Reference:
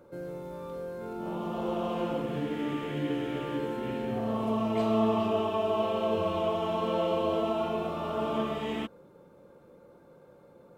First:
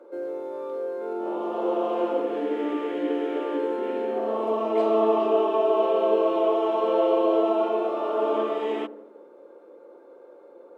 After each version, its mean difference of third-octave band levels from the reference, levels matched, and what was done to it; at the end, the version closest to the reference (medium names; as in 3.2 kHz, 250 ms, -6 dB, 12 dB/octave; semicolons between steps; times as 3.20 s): 8.0 dB: steep high-pass 330 Hz 36 dB/octave; tilt EQ -3.5 dB/octave; on a send: feedback echo behind a low-pass 81 ms, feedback 60%, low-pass 980 Hz, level -15 dB; on the sum: trim +4.5 dB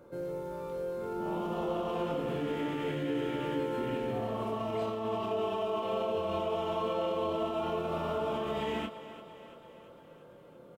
3.0 dB: peak limiter -26 dBFS, peak gain reduction 10.5 dB; doubling 25 ms -5.5 dB; on a send: thinning echo 341 ms, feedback 61%, high-pass 210 Hz, level -13.5 dB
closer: second